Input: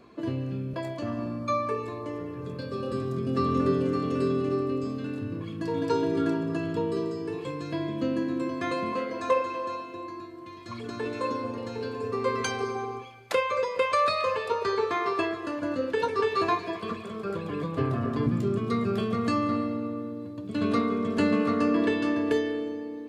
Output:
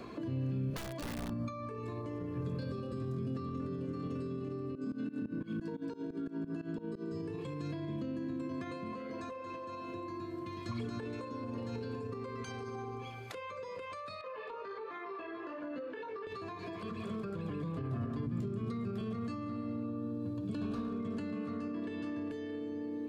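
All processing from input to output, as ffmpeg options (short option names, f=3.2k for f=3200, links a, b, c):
-filter_complex "[0:a]asettb=1/sr,asplit=3[a][b][c];[a]atrim=end=0.704[d];[b]atrim=start=0.7:end=1.33,asetpts=PTS-STARTPTS,afade=t=in:d=0.004:c=qsin,afade=t=out:st=0.626:d=0.004:c=qsin,highpass=76,lowshelf=f=220:g=-8.5,aeval=exprs='(mod(28.2*val(0)+1,2)-1)/28.2':c=same[e];[c]atrim=start=1.326[f];[d][e]acrossfade=d=0.004:c1=hsin:c2=qsin[g];[g][f]acrossfade=d=0.004:c1=qsin:c2=hsin,asettb=1/sr,asplit=3[h][i][j];[h]atrim=end=4.754[k];[i]atrim=start=4.75:end=7.12,asetpts=PTS-STARTPTS,afade=t=in:d=0.004:c=qsin,afade=t=out:st=2.366:d=0.004:c=qsin,aeval=exprs='val(0)+0.00562*sin(2*PI*1500*n/s)':c=same,highpass=f=220:t=q:w=2.5,aeval=exprs='val(0)*pow(10,-20*if(lt(mod(-5.9*n/s,1),2*abs(-5.9)/1000),1-mod(-5.9*n/s,1)/(2*abs(-5.9)/1000),(mod(-5.9*n/s,1)-2*abs(-5.9)/1000)/(1-2*abs(-5.9)/1000))/20)':c=same[l];[j]atrim=start=7.116[m];[k][l]acrossfade=d=0.004:c1=hsin:c2=qsin[n];[n][m]acrossfade=d=0.004:c1=qsin:c2=hsin,asettb=1/sr,asplit=3[o][p][q];[o]atrim=end=14.214[r];[p]atrim=start=14.21:end=16.27,asetpts=PTS-STARTPTS,afade=t=in:d=0.004:c=qsin,afade=t=out:st=2.056:d=0.004:c=qsin,flanger=delay=16.5:depth=4.3:speed=1.3,highpass=390,lowpass=2.7k,acompressor=threshold=-32dB:ratio=6:attack=3.2:release=140:knee=1:detection=peak[s];[q]atrim=start=16.266[t];[r][s]acrossfade=d=0.004:c1=hsin:c2=qsin[u];[u][t]acrossfade=d=0.004:c1=qsin:c2=hsin,asettb=1/sr,asplit=3[v][w][x];[v]atrim=end=19.834[y];[w]atrim=start=19.83:end=21,asetpts=PTS-STARTPTS,afade=t=in:d=0.004:c=qsin,afade=t=out:st=1.166:d=0.004:c=qsin,volume=22dB,asoftclip=hard,volume=-22dB,asuperstop=centerf=2000:order=8:qfactor=6.3[z];[x]atrim=start=20.996[aa];[y][z]acrossfade=d=0.004:c1=hsin:c2=qsin[ab];[ab][aa]acrossfade=d=0.004:c1=qsin:c2=hsin,acompressor=threshold=-32dB:ratio=6,alimiter=level_in=10.5dB:limit=-24dB:level=0:latency=1:release=104,volume=-10.5dB,acrossover=split=250[ac][ad];[ad]acompressor=threshold=-54dB:ratio=3[ae];[ac][ae]amix=inputs=2:normalize=0,volume=8dB"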